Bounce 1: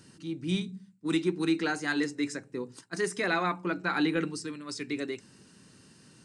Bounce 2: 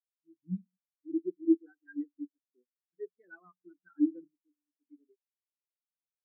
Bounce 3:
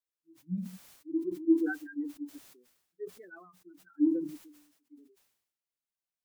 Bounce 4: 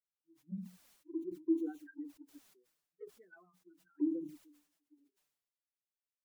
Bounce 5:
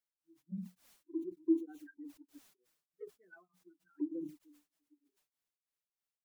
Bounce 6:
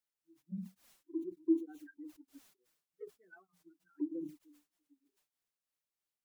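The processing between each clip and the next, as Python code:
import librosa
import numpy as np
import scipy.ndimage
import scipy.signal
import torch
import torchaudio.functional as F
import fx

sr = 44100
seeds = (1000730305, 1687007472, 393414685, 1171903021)

y1 = fx.spectral_expand(x, sr, expansion=4.0)
y2 = fx.sustainer(y1, sr, db_per_s=70.0)
y3 = fx.env_flanger(y2, sr, rest_ms=7.2, full_db=-28.0)
y3 = y3 * librosa.db_to_amplitude(-7.0)
y4 = y3 * np.abs(np.cos(np.pi * 3.3 * np.arange(len(y3)) / sr))
y4 = y4 * librosa.db_to_amplitude(2.0)
y5 = fx.record_warp(y4, sr, rpm=45.0, depth_cents=100.0)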